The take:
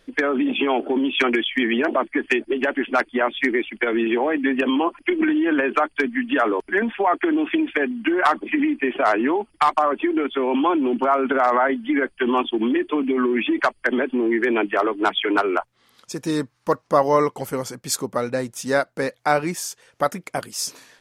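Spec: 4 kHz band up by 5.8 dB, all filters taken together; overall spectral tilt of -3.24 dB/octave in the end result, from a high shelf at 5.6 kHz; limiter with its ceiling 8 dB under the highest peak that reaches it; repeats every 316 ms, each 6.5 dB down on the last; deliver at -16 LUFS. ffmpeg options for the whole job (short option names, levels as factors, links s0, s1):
-af "equalizer=f=4000:t=o:g=6,highshelf=f=5600:g=5,alimiter=limit=0.282:level=0:latency=1,aecho=1:1:316|632|948|1264|1580|1896:0.473|0.222|0.105|0.0491|0.0231|0.0109,volume=1.78"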